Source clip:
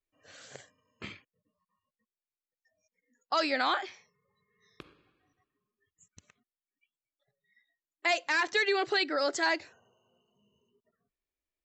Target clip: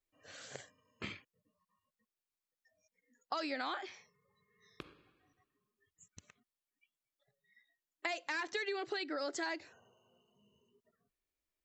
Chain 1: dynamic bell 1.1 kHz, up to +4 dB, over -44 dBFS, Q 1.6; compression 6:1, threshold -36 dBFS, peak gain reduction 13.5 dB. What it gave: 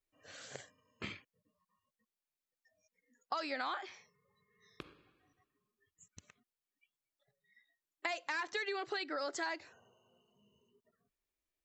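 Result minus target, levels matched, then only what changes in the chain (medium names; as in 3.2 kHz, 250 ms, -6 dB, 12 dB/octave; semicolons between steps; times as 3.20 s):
250 Hz band -3.5 dB
change: dynamic bell 300 Hz, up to +4 dB, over -44 dBFS, Q 1.6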